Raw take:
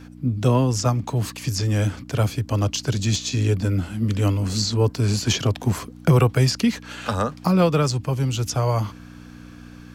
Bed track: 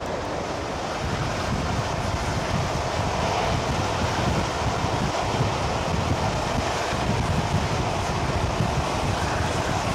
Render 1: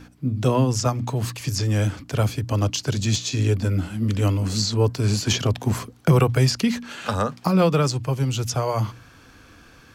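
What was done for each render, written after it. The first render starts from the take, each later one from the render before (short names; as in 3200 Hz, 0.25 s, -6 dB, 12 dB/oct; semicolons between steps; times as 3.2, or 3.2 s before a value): de-hum 60 Hz, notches 5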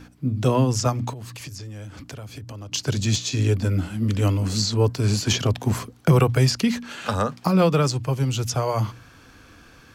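1.13–2.72 compressor 12:1, threshold -33 dBFS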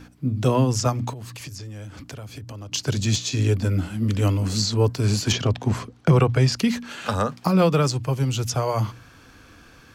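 5.32–6.52 air absorption 64 m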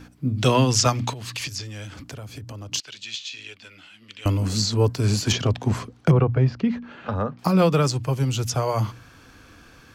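0.38–1.94 bell 3400 Hz +11 dB 2.5 oct; 2.8–4.26 band-pass 2900 Hz, Q 2.1; 6.11–7.39 tape spacing loss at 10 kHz 40 dB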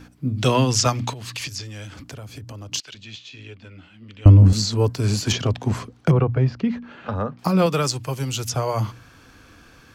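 2.94–4.53 tilt -4 dB/oct; 7.66–8.49 tilt +1.5 dB/oct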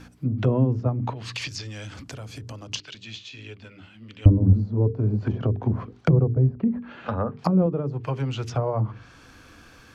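treble ducked by the level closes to 440 Hz, closed at -17.5 dBFS; notches 50/100/150/200/250/300/350/400/450 Hz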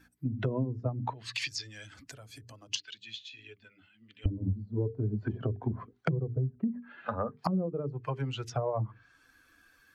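per-bin expansion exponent 1.5; compressor 16:1, threshold -26 dBFS, peak gain reduction 17.5 dB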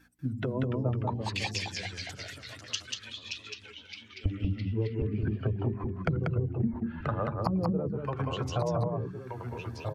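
on a send: echo 0.189 s -3.5 dB; on the sum: echoes that change speed 0.239 s, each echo -2 st, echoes 3, each echo -6 dB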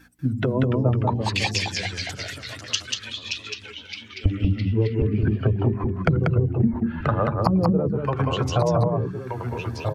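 gain +9 dB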